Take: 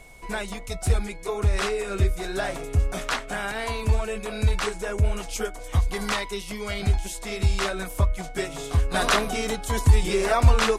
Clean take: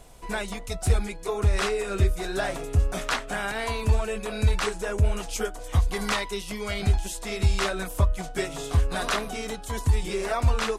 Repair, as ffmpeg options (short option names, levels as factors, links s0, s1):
-af "bandreject=f=2200:w=30,asetnsamples=n=441:p=0,asendcmd='8.94 volume volume -5.5dB',volume=1"